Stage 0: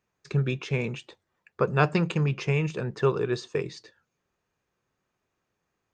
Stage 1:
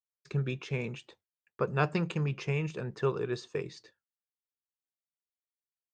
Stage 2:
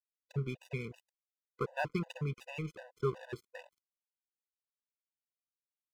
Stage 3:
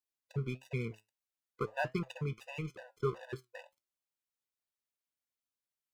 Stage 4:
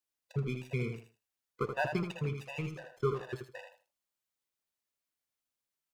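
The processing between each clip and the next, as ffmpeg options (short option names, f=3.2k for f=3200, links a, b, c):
-af "agate=range=-33dB:threshold=-50dB:ratio=3:detection=peak,volume=-6dB"
-af "aeval=exprs='sgn(val(0))*max(abs(val(0))-0.00841,0)':c=same,afftfilt=real='re*gt(sin(2*PI*2.7*pts/sr)*(1-2*mod(floor(b*sr/1024/500),2)),0)':imag='im*gt(sin(2*PI*2.7*pts/sr)*(1-2*mod(floor(b*sr/1024/500),2)),0)':win_size=1024:overlap=0.75,volume=-2dB"
-af "flanger=delay=7.5:depth=1.8:regen=73:speed=1.5:shape=sinusoidal,volume=4.5dB"
-af "aecho=1:1:79|158|237:0.447|0.0938|0.0197,volume=2dB"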